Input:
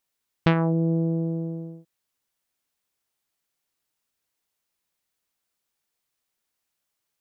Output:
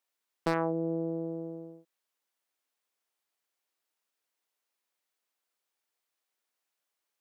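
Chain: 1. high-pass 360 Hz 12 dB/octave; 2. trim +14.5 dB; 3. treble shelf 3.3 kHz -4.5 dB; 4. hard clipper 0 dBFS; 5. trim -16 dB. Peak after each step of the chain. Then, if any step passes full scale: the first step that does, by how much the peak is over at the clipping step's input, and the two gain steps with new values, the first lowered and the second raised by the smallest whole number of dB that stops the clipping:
-5.0 dBFS, +9.5 dBFS, +8.5 dBFS, 0.0 dBFS, -16.0 dBFS; step 2, 8.5 dB; step 2 +5.5 dB, step 5 -7 dB

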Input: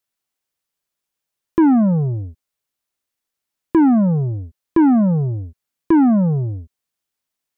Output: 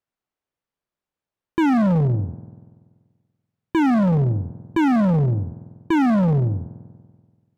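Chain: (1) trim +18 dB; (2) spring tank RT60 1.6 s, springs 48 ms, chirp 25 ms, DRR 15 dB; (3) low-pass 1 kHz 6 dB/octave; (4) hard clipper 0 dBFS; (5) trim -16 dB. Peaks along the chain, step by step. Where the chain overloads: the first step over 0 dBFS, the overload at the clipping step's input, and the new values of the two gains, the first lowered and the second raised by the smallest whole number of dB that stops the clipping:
+9.0 dBFS, +9.5 dBFS, +9.5 dBFS, 0.0 dBFS, -16.0 dBFS; step 1, 9.5 dB; step 1 +8 dB, step 5 -6 dB

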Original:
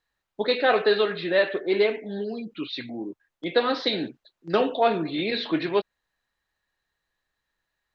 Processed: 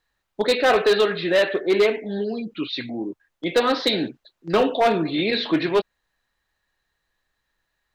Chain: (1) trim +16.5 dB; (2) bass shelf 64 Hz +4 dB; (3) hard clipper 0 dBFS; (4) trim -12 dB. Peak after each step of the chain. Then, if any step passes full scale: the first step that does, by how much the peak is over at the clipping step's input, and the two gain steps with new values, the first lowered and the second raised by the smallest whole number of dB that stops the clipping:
+8.0 dBFS, +8.0 dBFS, 0.0 dBFS, -12.0 dBFS; step 1, 8.0 dB; step 1 +8.5 dB, step 4 -4 dB

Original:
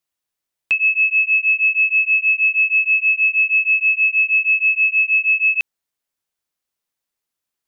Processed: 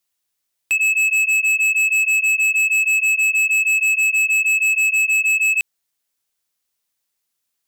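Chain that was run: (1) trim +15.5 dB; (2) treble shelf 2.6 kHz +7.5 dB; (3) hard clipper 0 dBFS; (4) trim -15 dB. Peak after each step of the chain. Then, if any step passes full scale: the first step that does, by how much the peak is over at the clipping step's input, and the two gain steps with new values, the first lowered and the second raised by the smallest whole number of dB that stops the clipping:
+5.0 dBFS, +9.0 dBFS, 0.0 dBFS, -15.0 dBFS; step 1, 9.0 dB; step 1 +6.5 dB, step 4 -6 dB

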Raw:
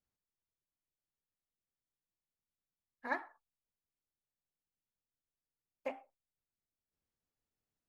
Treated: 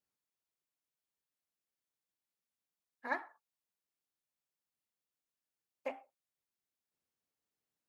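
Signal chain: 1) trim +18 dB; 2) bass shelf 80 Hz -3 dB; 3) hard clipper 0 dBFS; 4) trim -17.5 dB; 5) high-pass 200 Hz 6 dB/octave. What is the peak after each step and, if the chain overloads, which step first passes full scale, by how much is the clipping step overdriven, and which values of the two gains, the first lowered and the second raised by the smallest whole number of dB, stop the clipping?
-4.0 dBFS, -4.0 dBFS, -4.0 dBFS, -21.5 dBFS, -22.0 dBFS; nothing clips

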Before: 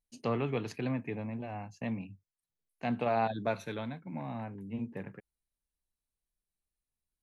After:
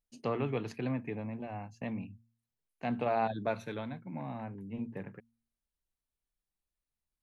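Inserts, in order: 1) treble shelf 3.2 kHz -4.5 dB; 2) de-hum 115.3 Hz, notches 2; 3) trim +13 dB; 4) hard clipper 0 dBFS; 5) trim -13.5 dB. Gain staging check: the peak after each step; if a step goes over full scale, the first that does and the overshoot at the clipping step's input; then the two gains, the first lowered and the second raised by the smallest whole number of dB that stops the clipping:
-19.0 dBFS, -19.0 dBFS, -6.0 dBFS, -6.0 dBFS, -19.5 dBFS; nothing clips

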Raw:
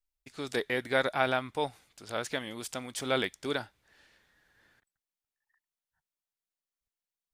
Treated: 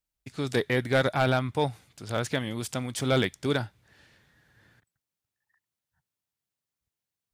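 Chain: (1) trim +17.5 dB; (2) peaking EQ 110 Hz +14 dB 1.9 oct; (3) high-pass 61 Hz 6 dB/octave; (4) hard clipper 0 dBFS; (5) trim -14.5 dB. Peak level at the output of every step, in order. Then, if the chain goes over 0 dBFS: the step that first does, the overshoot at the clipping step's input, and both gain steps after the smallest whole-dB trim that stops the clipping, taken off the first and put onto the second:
+7.0 dBFS, +8.0 dBFS, +8.5 dBFS, 0.0 dBFS, -14.5 dBFS; step 1, 8.5 dB; step 1 +8.5 dB, step 5 -5.5 dB

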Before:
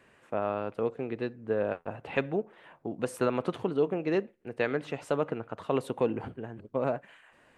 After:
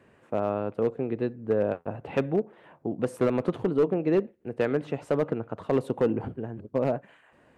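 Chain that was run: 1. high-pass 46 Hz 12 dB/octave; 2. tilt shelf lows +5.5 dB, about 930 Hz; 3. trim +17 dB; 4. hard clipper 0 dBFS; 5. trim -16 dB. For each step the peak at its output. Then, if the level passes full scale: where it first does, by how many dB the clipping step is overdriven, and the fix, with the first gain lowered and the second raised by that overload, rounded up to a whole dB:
-12.0 dBFS, -11.5 dBFS, +5.5 dBFS, 0.0 dBFS, -16.0 dBFS; step 3, 5.5 dB; step 3 +11 dB, step 5 -10 dB

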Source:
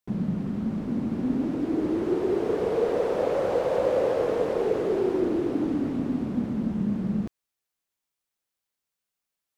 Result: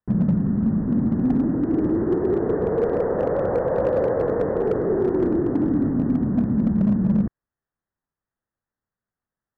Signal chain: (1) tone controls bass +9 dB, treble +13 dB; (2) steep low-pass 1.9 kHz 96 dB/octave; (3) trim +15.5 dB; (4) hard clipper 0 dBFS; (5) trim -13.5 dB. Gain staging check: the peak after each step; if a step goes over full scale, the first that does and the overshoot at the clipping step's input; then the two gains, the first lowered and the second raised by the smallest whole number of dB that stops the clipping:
-10.0 dBFS, -10.0 dBFS, +5.5 dBFS, 0.0 dBFS, -13.5 dBFS; step 3, 5.5 dB; step 3 +9.5 dB, step 5 -7.5 dB

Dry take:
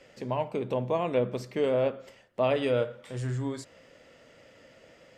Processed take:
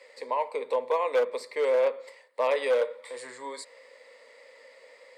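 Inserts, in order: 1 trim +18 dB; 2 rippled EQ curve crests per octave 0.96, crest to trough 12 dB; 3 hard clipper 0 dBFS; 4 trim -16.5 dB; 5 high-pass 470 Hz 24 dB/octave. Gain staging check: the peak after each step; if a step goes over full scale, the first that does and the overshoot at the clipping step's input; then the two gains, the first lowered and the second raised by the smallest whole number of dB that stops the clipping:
+3.5 dBFS, +6.5 dBFS, 0.0 dBFS, -16.5 dBFS, -15.5 dBFS; step 1, 6.5 dB; step 1 +11 dB, step 4 -9.5 dB

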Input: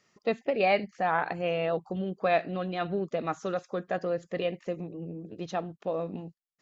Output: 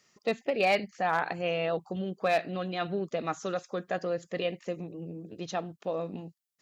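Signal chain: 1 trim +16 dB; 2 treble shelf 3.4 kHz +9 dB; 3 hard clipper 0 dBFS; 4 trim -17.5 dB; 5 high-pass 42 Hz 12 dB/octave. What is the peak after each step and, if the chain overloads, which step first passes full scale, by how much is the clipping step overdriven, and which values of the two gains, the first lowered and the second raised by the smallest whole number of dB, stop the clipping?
+4.5 dBFS, +5.5 dBFS, 0.0 dBFS, -17.5 dBFS, -17.0 dBFS; step 1, 5.5 dB; step 1 +10 dB, step 4 -11.5 dB

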